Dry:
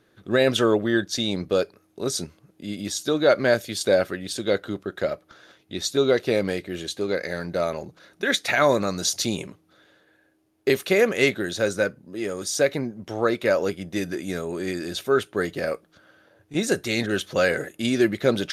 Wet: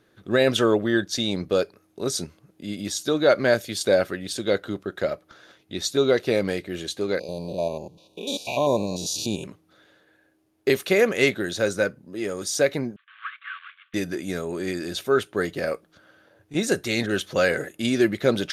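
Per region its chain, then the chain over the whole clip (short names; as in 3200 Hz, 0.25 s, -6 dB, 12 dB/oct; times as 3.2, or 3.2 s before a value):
7.19–9.44 stepped spectrum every 0.1 s + brick-wall FIR band-stop 1100–2300 Hz
12.96–13.94 CVSD 16 kbps + rippled Chebyshev high-pass 1100 Hz, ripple 6 dB
whole clip: dry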